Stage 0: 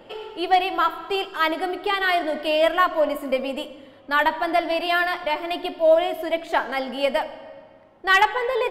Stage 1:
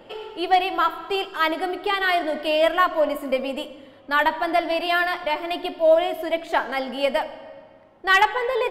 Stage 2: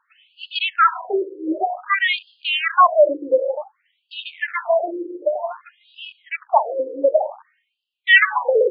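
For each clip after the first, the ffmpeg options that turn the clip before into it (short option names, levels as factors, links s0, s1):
-af anull
-af "afwtdn=0.0251,afftfilt=real='re*between(b*sr/1024,370*pow(3700/370,0.5+0.5*sin(2*PI*0.54*pts/sr))/1.41,370*pow(3700/370,0.5+0.5*sin(2*PI*0.54*pts/sr))*1.41)':imag='im*between(b*sr/1024,370*pow(3700/370,0.5+0.5*sin(2*PI*0.54*pts/sr))/1.41,370*pow(3700/370,0.5+0.5*sin(2*PI*0.54*pts/sr))*1.41)':win_size=1024:overlap=0.75,volume=2.51"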